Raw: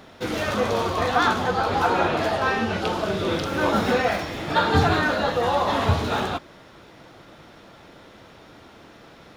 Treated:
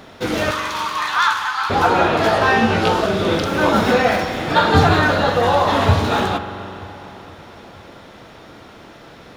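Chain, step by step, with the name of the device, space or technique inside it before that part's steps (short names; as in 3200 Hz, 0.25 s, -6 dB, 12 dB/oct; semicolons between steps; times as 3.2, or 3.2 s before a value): 0.51–1.7 steep high-pass 890 Hz 72 dB/oct; dub delay into a spring reverb (darkening echo 0.468 s, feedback 63%, low-pass 3900 Hz, level -21 dB; spring tank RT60 3 s, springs 42 ms, chirp 35 ms, DRR 9.5 dB); 2.22–3.06 doubler 18 ms -2.5 dB; gain +5.5 dB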